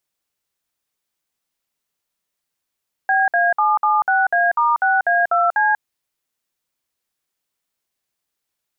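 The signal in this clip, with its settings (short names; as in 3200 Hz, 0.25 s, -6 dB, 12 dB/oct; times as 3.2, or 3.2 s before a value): DTMF "BA776A*6A2C", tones 0.19 s, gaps 57 ms, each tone -16 dBFS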